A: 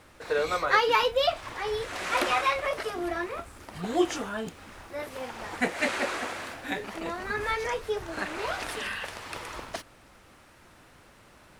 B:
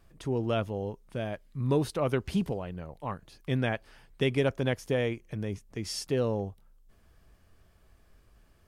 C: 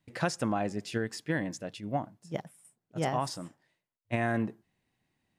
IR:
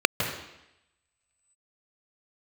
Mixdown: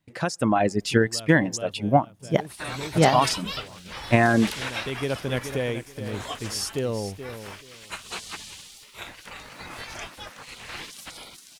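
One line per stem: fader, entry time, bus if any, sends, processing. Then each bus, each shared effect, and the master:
+2.0 dB, 2.30 s, no send, no echo send, spectral gate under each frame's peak -15 dB weak
+0.5 dB, 0.65 s, no send, echo send -11 dB, gate with hold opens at -47 dBFS; high shelf 5600 Hz +11 dB; auto duck -15 dB, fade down 1.40 s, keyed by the third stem
+1.5 dB, 0.00 s, no send, no echo send, AGC gain up to 12 dB; reverb removal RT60 1.7 s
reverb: off
echo: feedback echo 0.428 s, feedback 21%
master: dry

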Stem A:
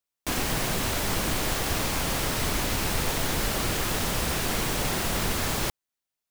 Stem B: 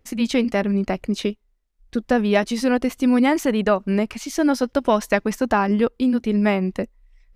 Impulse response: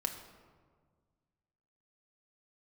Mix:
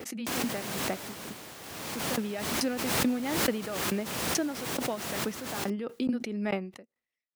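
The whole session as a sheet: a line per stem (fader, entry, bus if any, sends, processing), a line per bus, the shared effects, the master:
-8.0 dB, 0.00 s, no send, auto duck -11 dB, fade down 1.85 s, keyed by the second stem
-6.0 dB, 0.00 s, no send, HPF 150 Hz 12 dB/oct; notch 1000 Hz, Q 8.6; dB-ramp tremolo decaying 2.3 Hz, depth 31 dB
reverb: off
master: HPF 140 Hz 12 dB/oct; backwards sustainer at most 30 dB/s

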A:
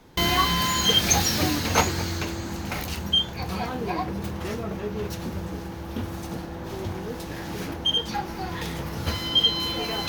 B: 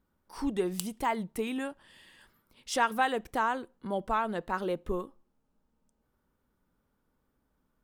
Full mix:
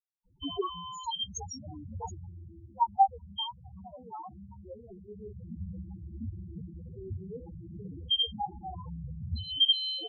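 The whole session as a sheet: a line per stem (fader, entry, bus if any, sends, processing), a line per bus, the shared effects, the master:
-3.0 dB, 0.25 s, no send, auto duck -10 dB, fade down 0.80 s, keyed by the second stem
-6.0 dB, 0.00 s, no send, high shelf 4000 Hz +6.5 dB; spectral expander 4:1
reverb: off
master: Chebyshev band-stop 1200–3000 Hz, order 2; bell 310 Hz -4.5 dB 0.67 oct; loudest bins only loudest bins 4

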